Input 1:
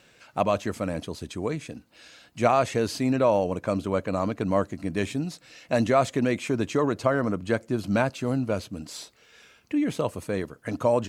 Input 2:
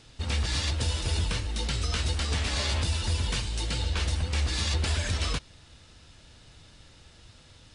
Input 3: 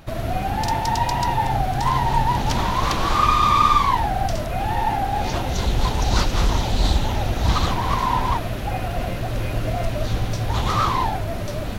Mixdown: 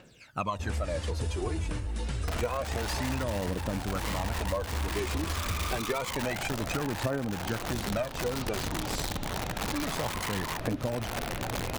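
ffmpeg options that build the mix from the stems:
-filter_complex "[0:a]aphaser=in_gain=1:out_gain=1:delay=3.3:decay=0.75:speed=0.28:type=triangular,volume=0.631[s0];[1:a]equalizer=f=4100:w=0.71:g=-13.5,adelay=400,volume=0.891[s1];[2:a]lowpass=f=3200:p=1,acompressor=threshold=0.0708:ratio=6,aeval=exprs='(mod(11.9*val(0)+1,2)-1)/11.9':c=same,adelay=2200,volume=0.531[s2];[s0][s1][s2]amix=inputs=3:normalize=0,acompressor=threshold=0.0447:ratio=10"

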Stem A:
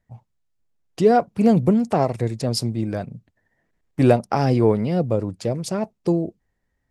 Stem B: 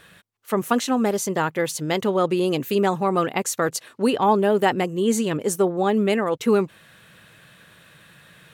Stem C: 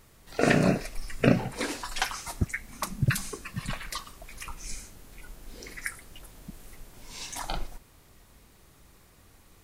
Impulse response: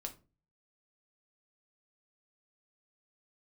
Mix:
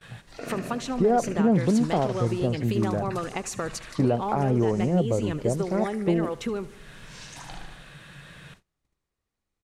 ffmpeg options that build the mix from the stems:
-filter_complex "[0:a]lowpass=1500,volume=0.841[s0];[1:a]equalizer=f=140:t=o:w=0.3:g=8,acompressor=threshold=0.0282:ratio=5,volume=1.33,asplit=2[s1][s2];[s2]volume=0.126[s3];[2:a]acompressor=threshold=0.00794:ratio=2,volume=0.75,asplit=2[s4][s5];[s5]volume=0.562[s6];[s3][s6]amix=inputs=2:normalize=0,aecho=0:1:75|150|225|300|375|450|525|600|675:1|0.58|0.336|0.195|0.113|0.0656|0.0381|0.0221|0.0128[s7];[s0][s1][s4][s7]amix=inputs=4:normalize=0,agate=range=0.0501:threshold=0.00316:ratio=16:detection=peak,lowpass=8300,alimiter=limit=0.224:level=0:latency=1:release=146"

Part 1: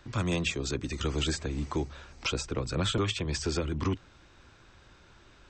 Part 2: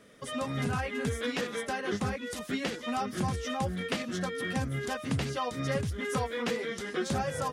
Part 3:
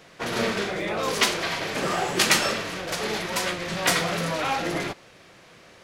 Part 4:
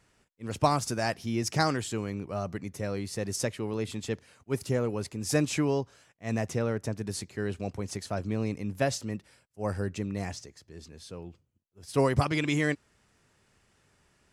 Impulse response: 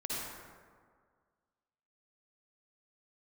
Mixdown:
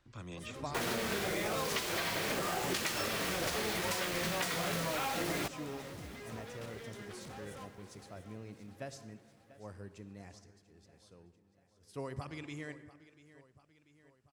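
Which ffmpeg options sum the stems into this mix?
-filter_complex "[0:a]volume=0.141[s0];[1:a]asoftclip=type=hard:threshold=0.015,adelay=150,volume=0.251,asplit=3[s1][s2][s3];[s2]volume=0.2[s4];[s3]volume=0.299[s5];[2:a]acompressor=threshold=0.0398:ratio=6,acrusher=bits=5:mix=0:aa=0.000001,adelay=550,volume=1.12,asplit=2[s6][s7];[s7]volume=0.0708[s8];[3:a]volume=0.126,asplit=3[s9][s10][s11];[s10]volume=0.178[s12];[s11]volume=0.15[s13];[4:a]atrim=start_sample=2205[s14];[s4][s12]amix=inputs=2:normalize=0[s15];[s15][s14]afir=irnorm=-1:irlink=0[s16];[s5][s8][s13]amix=inputs=3:normalize=0,aecho=0:1:690|1380|2070|2760|3450|4140|4830|5520:1|0.56|0.314|0.176|0.0983|0.0551|0.0308|0.0173[s17];[s0][s1][s6][s9][s16][s17]amix=inputs=6:normalize=0,acompressor=threshold=0.0224:ratio=3"

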